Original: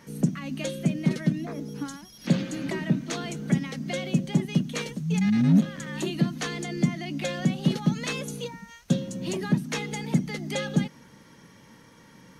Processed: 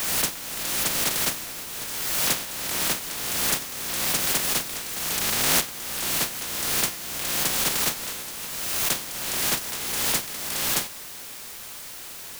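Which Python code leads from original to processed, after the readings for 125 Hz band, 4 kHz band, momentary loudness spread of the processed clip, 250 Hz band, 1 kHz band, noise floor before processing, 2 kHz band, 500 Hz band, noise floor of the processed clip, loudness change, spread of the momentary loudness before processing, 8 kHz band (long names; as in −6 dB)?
−14.5 dB, +11.0 dB, 11 LU, −14.0 dB, +6.5 dB, −53 dBFS, +6.0 dB, −3.0 dB, −39 dBFS, +3.5 dB, 9 LU, +16.0 dB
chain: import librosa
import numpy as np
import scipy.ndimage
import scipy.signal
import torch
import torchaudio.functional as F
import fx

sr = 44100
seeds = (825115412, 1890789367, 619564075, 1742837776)

y = fx.spec_flatten(x, sr, power=0.11)
y = fx.quant_dither(y, sr, seeds[0], bits=6, dither='triangular')
y = fx.pre_swell(y, sr, db_per_s=29.0)
y = F.gain(torch.from_numpy(y), -3.0).numpy()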